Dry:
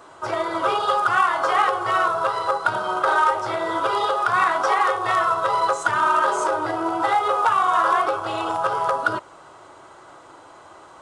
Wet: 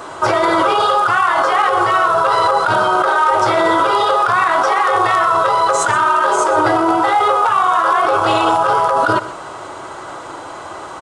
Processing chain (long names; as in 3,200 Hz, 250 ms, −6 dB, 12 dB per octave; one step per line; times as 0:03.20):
in parallel at +3 dB: compressor whose output falls as the input rises −26 dBFS, ratio −0.5
on the sum: brickwall limiter −9 dBFS, peak gain reduction 4.5 dB
single-tap delay 125 ms −14.5 dB
level +4 dB